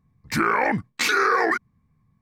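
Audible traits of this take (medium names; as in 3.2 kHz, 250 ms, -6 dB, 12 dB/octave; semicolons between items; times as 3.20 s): noise floor -68 dBFS; spectral tilt -3.5 dB/octave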